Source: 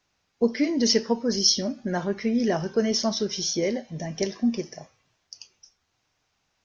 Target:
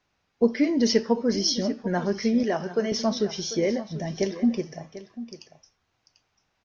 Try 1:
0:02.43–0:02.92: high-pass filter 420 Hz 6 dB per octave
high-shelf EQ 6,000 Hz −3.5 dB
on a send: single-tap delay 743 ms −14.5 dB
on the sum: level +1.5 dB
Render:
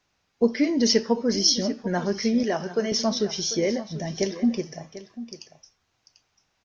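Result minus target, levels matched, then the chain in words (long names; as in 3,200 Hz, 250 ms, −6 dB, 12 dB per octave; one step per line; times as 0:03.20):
8,000 Hz band +4.5 dB
0:02.43–0:02.92: high-pass filter 420 Hz 6 dB per octave
high-shelf EQ 6,000 Hz −14.5 dB
on a send: single-tap delay 743 ms −14.5 dB
on the sum: level +1.5 dB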